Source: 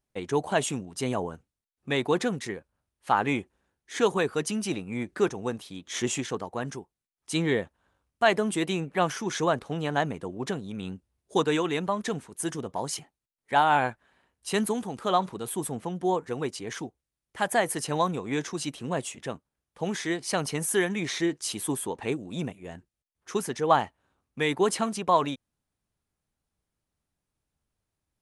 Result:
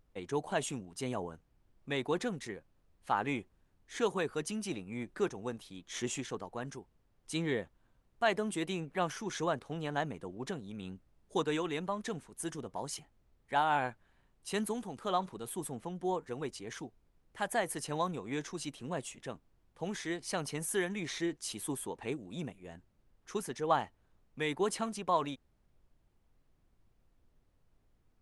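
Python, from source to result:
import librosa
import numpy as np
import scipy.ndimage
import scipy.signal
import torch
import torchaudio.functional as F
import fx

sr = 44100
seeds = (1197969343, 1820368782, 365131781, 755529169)

y = fx.dmg_noise_colour(x, sr, seeds[0], colour='brown', level_db=-60.0)
y = F.gain(torch.from_numpy(y), -8.0).numpy()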